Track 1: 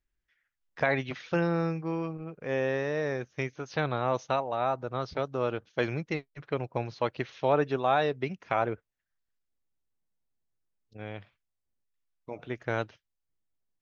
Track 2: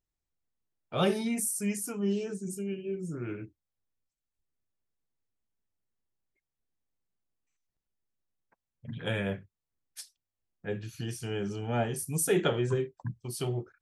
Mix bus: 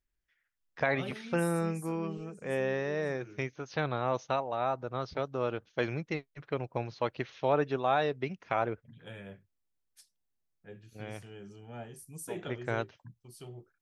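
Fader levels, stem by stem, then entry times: -2.5 dB, -14.5 dB; 0.00 s, 0.00 s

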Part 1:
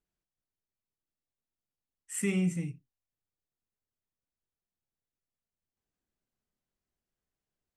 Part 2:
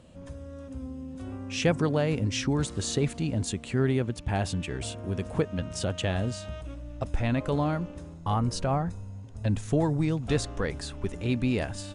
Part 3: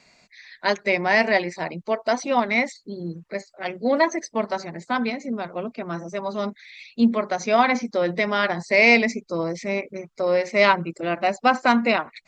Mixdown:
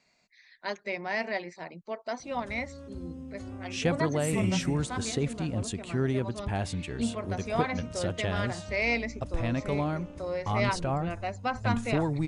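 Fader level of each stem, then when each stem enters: -1.5 dB, -3.0 dB, -12.5 dB; 2.10 s, 2.20 s, 0.00 s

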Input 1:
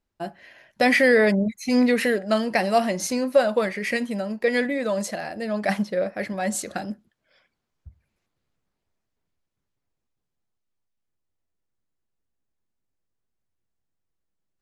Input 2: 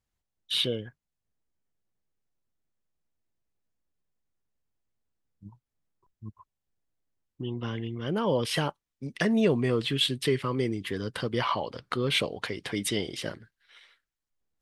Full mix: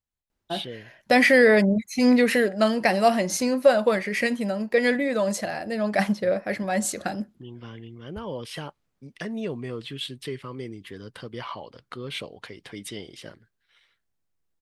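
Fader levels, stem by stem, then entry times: +1.0 dB, -7.5 dB; 0.30 s, 0.00 s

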